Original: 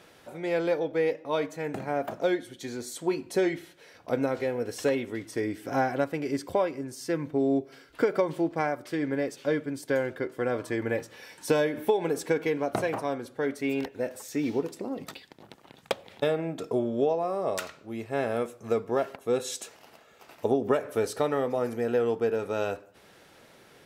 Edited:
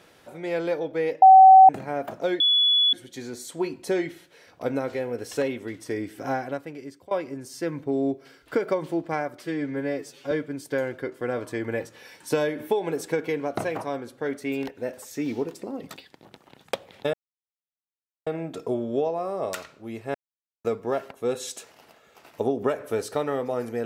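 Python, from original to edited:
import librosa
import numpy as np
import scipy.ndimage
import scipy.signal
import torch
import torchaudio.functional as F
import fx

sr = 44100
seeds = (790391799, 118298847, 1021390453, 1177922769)

y = fx.edit(x, sr, fx.bleep(start_s=1.22, length_s=0.47, hz=762.0, db=-7.0),
    fx.insert_tone(at_s=2.4, length_s=0.53, hz=3410.0, db=-16.5),
    fx.fade_out_to(start_s=5.61, length_s=0.97, floor_db=-21.0),
    fx.stretch_span(start_s=8.9, length_s=0.59, factor=1.5),
    fx.insert_silence(at_s=16.31, length_s=1.13),
    fx.silence(start_s=18.19, length_s=0.5), tone=tone)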